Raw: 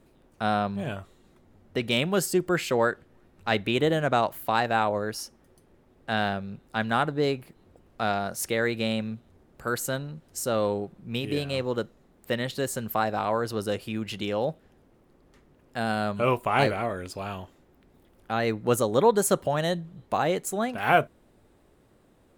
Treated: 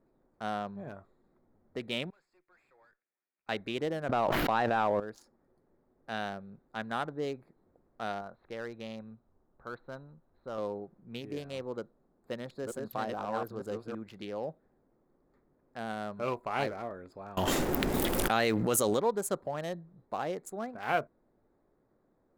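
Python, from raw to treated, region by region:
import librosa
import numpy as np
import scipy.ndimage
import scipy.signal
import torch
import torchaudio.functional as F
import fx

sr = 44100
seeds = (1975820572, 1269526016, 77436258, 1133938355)

y = fx.chain(x, sr, fx.bandpass_q(hz=2500.0, q=4.8),
    fx.tube_stage(drive_db=49.0, bias=0.5), at=(2.1, 3.49))
y = fx.chain(y, sr, fx.leveller(passes=1),
    fx.air_absorb(metres=250.0),
    fx.env_flatten(amount_pct=100), at=(4.09, 5.0))
y = fx.chain(y, sr, fx.cheby_ripple(hz=4100.0, ripple_db=6),
    fx.low_shelf(hz=74.0, db=12.0), at=(8.21, 10.58))
y = fx.chain(y, sr, fx.reverse_delay(ms=474, wet_db=-2),
    fx.peak_eq(hz=2000.0, db=-5.5, octaves=0.39), at=(11.77, 13.95))
y = fx.chain(y, sr, fx.high_shelf(hz=3000.0, db=8.5),
    fx.env_flatten(amount_pct=100), at=(17.37, 18.99))
y = fx.wiener(y, sr, points=15)
y = fx.peak_eq(y, sr, hz=71.0, db=-8.5, octaves=2.0)
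y = F.gain(torch.from_numpy(y), -8.5).numpy()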